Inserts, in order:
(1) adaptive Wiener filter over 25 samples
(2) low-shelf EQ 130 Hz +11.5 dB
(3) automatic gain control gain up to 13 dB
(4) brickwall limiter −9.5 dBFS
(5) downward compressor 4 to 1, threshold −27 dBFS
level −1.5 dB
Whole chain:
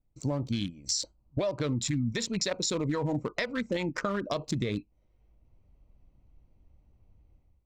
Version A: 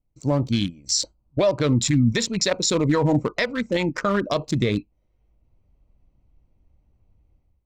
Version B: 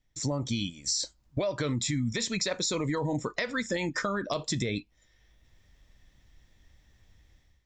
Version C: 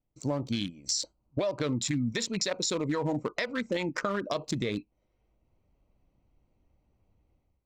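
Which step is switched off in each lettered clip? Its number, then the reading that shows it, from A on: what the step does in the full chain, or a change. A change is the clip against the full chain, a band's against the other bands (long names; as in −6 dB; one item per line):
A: 5, average gain reduction 7.5 dB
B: 1, 2 kHz band +2.5 dB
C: 2, 125 Hz band −3.5 dB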